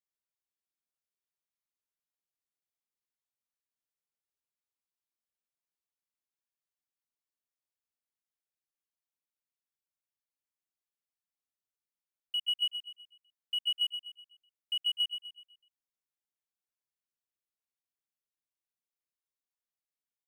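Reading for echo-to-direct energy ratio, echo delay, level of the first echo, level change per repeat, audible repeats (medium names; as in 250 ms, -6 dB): -8.0 dB, 125 ms, -9.0 dB, -7.5 dB, 4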